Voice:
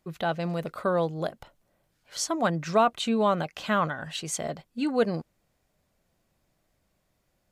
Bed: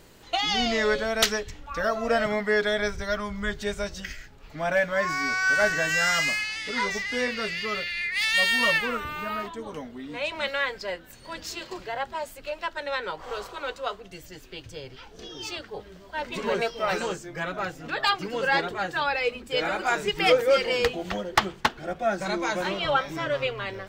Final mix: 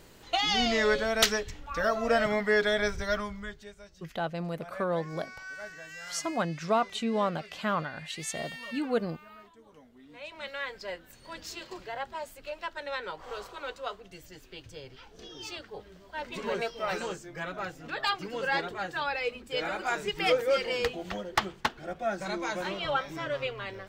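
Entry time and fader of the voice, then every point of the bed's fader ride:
3.95 s, -4.5 dB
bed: 3.19 s -1.5 dB
3.74 s -20 dB
9.68 s -20 dB
10.91 s -5.5 dB

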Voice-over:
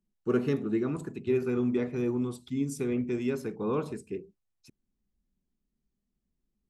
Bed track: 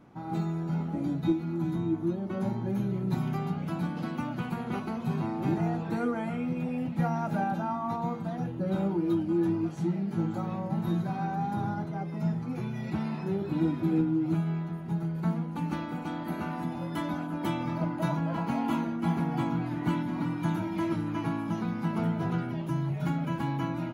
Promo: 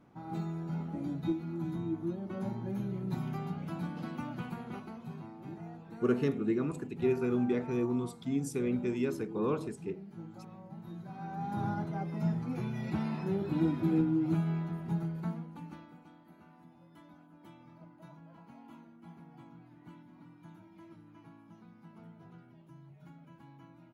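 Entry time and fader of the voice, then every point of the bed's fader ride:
5.75 s, -2.0 dB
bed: 4.42 s -6 dB
5.39 s -16.5 dB
10.94 s -16.5 dB
11.66 s -2 dB
14.96 s -2 dB
16.23 s -24 dB

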